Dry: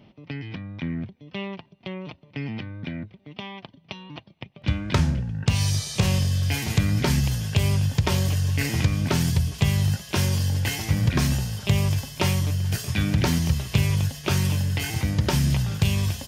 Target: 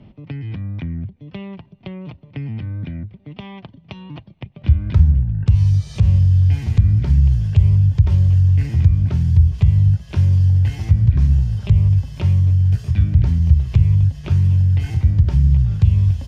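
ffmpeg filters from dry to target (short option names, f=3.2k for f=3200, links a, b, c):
-filter_complex "[0:a]aemphasis=mode=reproduction:type=bsi,acrossover=split=120[a][b];[b]acompressor=threshold=-33dB:ratio=5[c];[a][c]amix=inputs=2:normalize=0,volume=2dB"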